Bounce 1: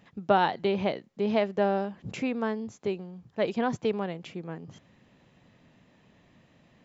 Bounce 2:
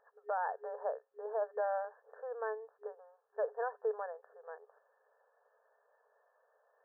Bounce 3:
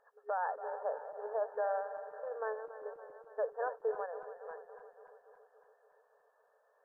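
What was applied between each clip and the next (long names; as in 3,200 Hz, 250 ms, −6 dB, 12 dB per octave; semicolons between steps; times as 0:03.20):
brick-wall band-pass 410–1,800 Hz; brickwall limiter −21 dBFS, peak gain reduction 9.5 dB; level −5 dB
feedback delay that plays each chunk backwards 141 ms, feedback 79%, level −12 dB; AAC 64 kbit/s 32,000 Hz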